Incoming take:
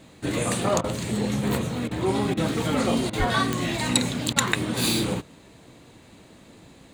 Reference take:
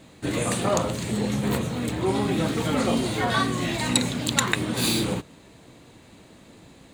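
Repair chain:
click removal
0:03.18–0:03.30: high-pass filter 140 Hz 24 dB per octave
repair the gap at 0:00.81/0:01.88/0:02.34/0:03.10/0:04.33, 30 ms

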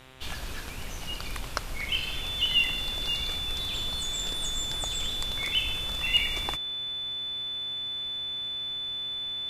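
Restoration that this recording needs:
hum removal 130.3 Hz, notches 30
notch filter 3,500 Hz, Q 30

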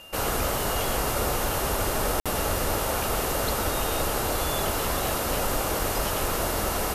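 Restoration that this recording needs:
click removal
notch filter 2,800 Hz, Q 30
repair the gap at 0:02.20, 56 ms

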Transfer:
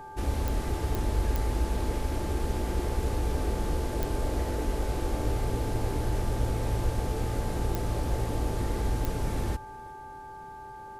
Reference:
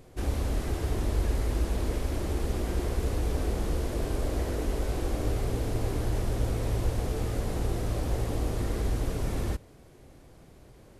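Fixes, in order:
click removal
hum removal 395.1 Hz, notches 4
notch filter 870 Hz, Q 30
echo removal 360 ms −23 dB

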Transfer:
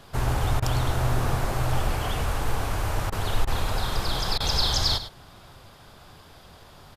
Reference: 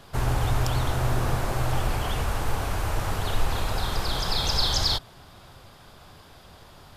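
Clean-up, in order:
repair the gap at 0:00.60/0:03.10/0:03.45/0:04.38, 21 ms
echo removal 104 ms −12 dB

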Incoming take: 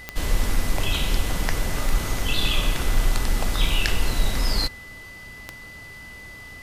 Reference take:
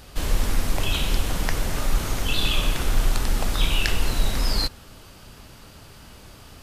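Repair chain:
click removal
notch filter 2,000 Hz, Q 30

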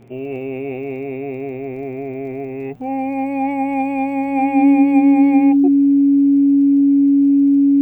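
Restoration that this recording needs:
click removal
hum removal 119.2 Hz, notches 30
notch filter 280 Hz, Q 30

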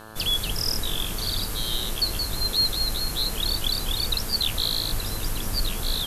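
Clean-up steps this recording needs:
hum removal 109 Hz, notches 16

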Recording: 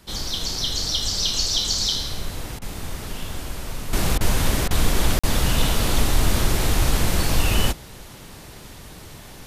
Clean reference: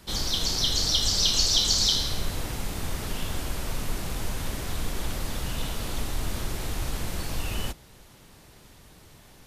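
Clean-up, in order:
repair the gap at 0:05.19, 45 ms
repair the gap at 0:02.59/0:04.18/0:04.68, 26 ms
level correction −11 dB, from 0:03.93

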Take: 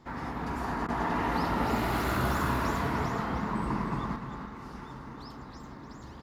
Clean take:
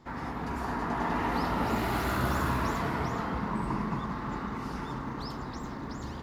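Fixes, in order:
repair the gap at 0:00.87, 14 ms
echo removal 300 ms −9 dB
level correction +7.5 dB, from 0:04.16

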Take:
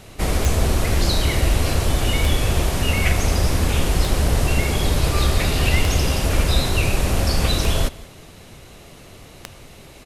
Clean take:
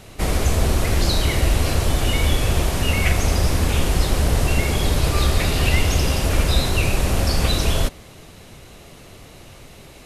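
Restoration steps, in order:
click removal
echo removal 181 ms −21.5 dB

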